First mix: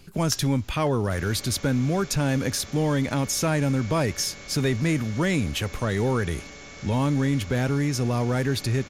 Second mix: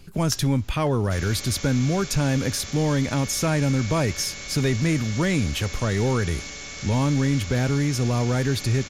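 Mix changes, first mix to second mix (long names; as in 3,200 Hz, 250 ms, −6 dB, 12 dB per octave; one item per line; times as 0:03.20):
second sound: add high-shelf EQ 2,100 Hz +11.5 dB
master: add low-shelf EQ 110 Hz +6 dB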